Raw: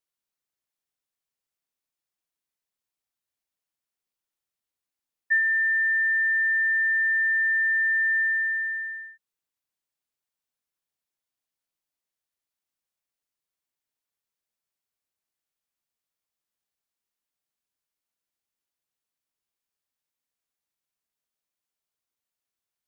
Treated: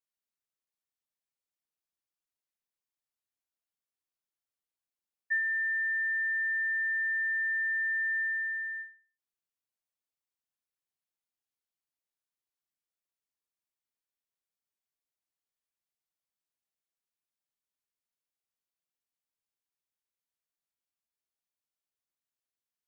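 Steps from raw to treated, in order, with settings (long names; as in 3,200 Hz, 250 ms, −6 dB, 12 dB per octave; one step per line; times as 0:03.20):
every ending faded ahead of time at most 150 dB per second
level −7.5 dB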